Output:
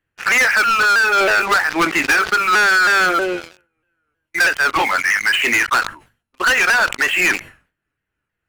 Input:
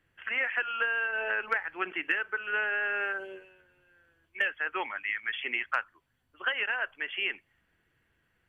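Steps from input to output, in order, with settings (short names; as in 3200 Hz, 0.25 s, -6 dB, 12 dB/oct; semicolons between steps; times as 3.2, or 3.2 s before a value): repeated pitch sweeps -2.5 st, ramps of 0.319 s; sample leveller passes 5; sustainer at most 150 dB/s; gain +5 dB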